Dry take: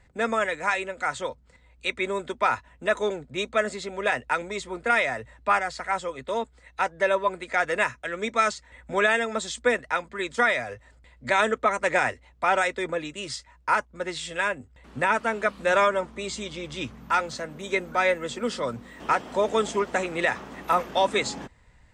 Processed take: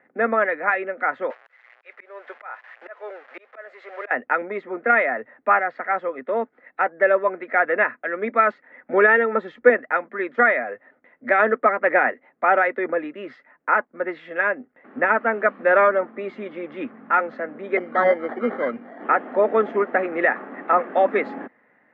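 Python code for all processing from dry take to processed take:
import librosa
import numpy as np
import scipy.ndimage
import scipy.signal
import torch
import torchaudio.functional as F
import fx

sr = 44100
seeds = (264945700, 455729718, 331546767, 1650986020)

y = fx.chain(x, sr, fx.crossing_spikes(level_db=-21.0),
    fx.highpass(hz=520.0, slope=24),
    fx.auto_swell(attack_ms=497.0), at=(1.3, 4.11))
y = fx.chain(y, sr, fx.bass_treble(bass_db=11, treble_db=-2),
    fx.comb(ms=2.2, depth=0.49), at=(8.93, 9.7))
y = fx.chain(y, sr, fx.median_filter(points=3),
    fx.sample_hold(seeds[0], rate_hz=2600.0, jitter_pct=0), at=(17.77, 19.04))
y = scipy.signal.sosfilt(scipy.signal.ellip(3, 1.0, 70, [240.0, 1900.0], 'bandpass', fs=sr, output='sos'), y)
y = fx.notch(y, sr, hz=960.0, q=7.2)
y = y * librosa.db_to_amplitude(6.0)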